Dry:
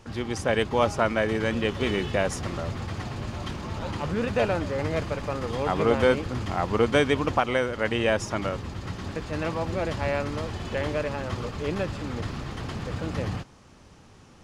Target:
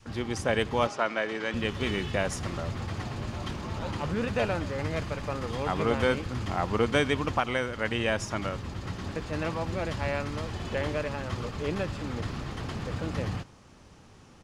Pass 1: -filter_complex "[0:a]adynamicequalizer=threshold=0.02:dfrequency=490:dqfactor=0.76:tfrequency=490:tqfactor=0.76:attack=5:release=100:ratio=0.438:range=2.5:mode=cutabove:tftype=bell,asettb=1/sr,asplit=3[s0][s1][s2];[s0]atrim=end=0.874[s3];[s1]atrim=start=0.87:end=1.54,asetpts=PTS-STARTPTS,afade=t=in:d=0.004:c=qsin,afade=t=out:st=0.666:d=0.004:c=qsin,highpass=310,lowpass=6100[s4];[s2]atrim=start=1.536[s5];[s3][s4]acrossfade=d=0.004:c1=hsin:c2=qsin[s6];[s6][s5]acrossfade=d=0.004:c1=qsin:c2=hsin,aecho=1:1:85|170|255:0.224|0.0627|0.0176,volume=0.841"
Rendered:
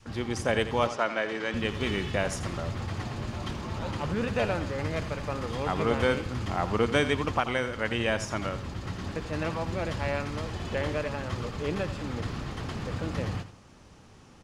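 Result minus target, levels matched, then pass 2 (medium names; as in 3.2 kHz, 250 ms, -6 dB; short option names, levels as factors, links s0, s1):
echo-to-direct +11 dB
-filter_complex "[0:a]adynamicequalizer=threshold=0.02:dfrequency=490:dqfactor=0.76:tfrequency=490:tqfactor=0.76:attack=5:release=100:ratio=0.438:range=2.5:mode=cutabove:tftype=bell,asettb=1/sr,asplit=3[s0][s1][s2];[s0]atrim=end=0.874[s3];[s1]atrim=start=0.87:end=1.54,asetpts=PTS-STARTPTS,afade=t=in:d=0.004:c=qsin,afade=t=out:st=0.666:d=0.004:c=qsin,highpass=310,lowpass=6100[s4];[s2]atrim=start=1.536[s5];[s3][s4]acrossfade=d=0.004:c1=hsin:c2=qsin[s6];[s6][s5]acrossfade=d=0.004:c1=qsin:c2=hsin,aecho=1:1:85|170:0.0631|0.0177,volume=0.841"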